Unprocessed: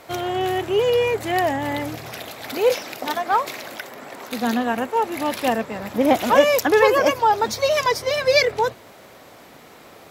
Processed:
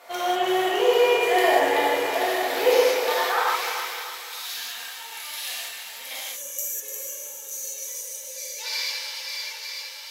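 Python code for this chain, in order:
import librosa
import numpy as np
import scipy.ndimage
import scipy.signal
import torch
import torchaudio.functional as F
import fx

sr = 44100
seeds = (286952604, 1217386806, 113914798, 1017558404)

p1 = fx.reverse_delay_fb(x, sr, ms=451, feedback_pct=74, wet_db=-8.0)
p2 = fx.filter_sweep_highpass(p1, sr, from_hz=560.0, to_hz=3600.0, start_s=2.72, end_s=4.04, q=0.84)
p3 = p2 + fx.echo_feedback(p2, sr, ms=297, feedback_pct=45, wet_db=-8.5, dry=0)
p4 = fx.spec_box(p3, sr, start_s=6.21, length_s=2.37, low_hz=590.0, high_hz=5700.0, gain_db=-20)
p5 = fx.rev_gated(p4, sr, seeds[0], gate_ms=220, shape='flat', drr_db=-8.0)
y = F.gain(torch.from_numpy(p5), -6.0).numpy()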